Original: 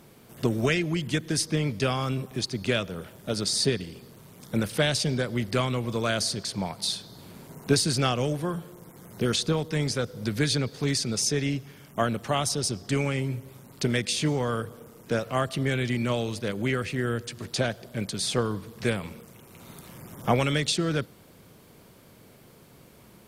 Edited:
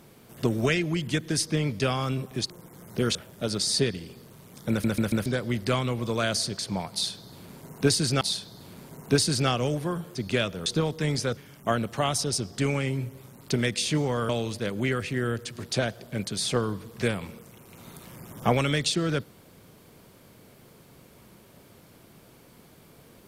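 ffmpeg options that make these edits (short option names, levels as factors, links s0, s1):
-filter_complex "[0:a]asplit=12[s0][s1][s2][s3][s4][s5][s6][s7][s8][s9][s10][s11];[s0]atrim=end=2.502[s12];[s1]atrim=start=8.728:end=9.382[s13];[s2]atrim=start=3.008:end=4.702[s14];[s3]atrim=start=4.558:end=4.702[s15];[s4]atrim=start=4.558:end=4.702[s16];[s5]atrim=start=4.558:end=4.702[s17];[s6]atrim=start=5.118:end=8.072[s18];[s7]atrim=start=6.788:end=8.732[s19];[s8]atrim=start=2.498:end=3.012[s20];[s9]atrim=start=9.378:end=10.092[s21];[s10]atrim=start=11.678:end=14.602[s22];[s11]atrim=start=16.108[s23];[s12][s13]acrossfade=d=0.004:c1=hsin:c2=hsin[s24];[s24][s14]acrossfade=d=0.004:c1=hsin:c2=hsin[s25];[s25][s15]acrossfade=d=0.004:c1=hsin:c2=hsin[s26];[s26][s16]acrossfade=d=0.004:c1=hsin:c2=hsin[s27];[s27][s17]acrossfade=d=0.004:c1=hsin:c2=hsin[s28];[s28][s18]acrossfade=d=0.004:c1=hsin:c2=hsin[s29];[s29][s19]acrossfade=d=0.004:c1=hsin:c2=hsin[s30];[s30][s20]acrossfade=d=0.004:c1=hsin:c2=hsin[s31];[s31][s21]acrossfade=d=0.004:c1=hsin:c2=hsin[s32];[s32][s22]acrossfade=d=0.004:c1=hsin:c2=hsin[s33];[s33][s23]acrossfade=d=0.004:c1=hsin:c2=hsin"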